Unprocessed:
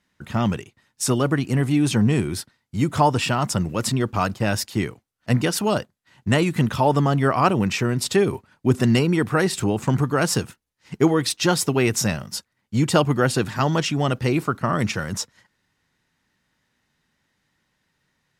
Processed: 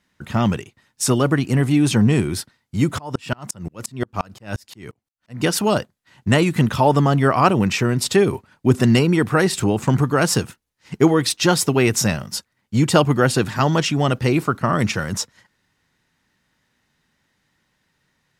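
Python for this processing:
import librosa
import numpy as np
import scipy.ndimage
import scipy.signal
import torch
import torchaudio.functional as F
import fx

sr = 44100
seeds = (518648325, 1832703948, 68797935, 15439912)

y = fx.tremolo_decay(x, sr, direction='swelling', hz=5.7, depth_db=35, at=(2.97, 5.41), fade=0.02)
y = F.gain(torch.from_numpy(y), 3.0).numpy()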